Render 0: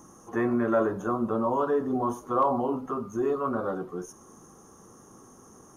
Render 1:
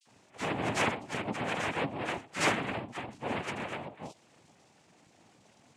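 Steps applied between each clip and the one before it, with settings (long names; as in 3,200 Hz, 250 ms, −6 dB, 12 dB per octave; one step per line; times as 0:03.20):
harmonic generator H 3 −7 dB, 4 −13 dB, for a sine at −13.5 dBFS
all-pass dispersion lows, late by 63 ms, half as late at 2,200 Hz
cochlear-implant simulation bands 4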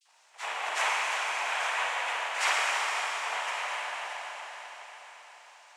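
high-pass filter 760 Hz 24 dB per octave
convolution reverb RT60 5.0 s, pre-delay 33 ms, DRR −5 dB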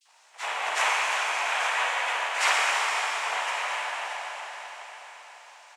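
double-tracking delay 16 ms −11.5 dB
level +3.5 dB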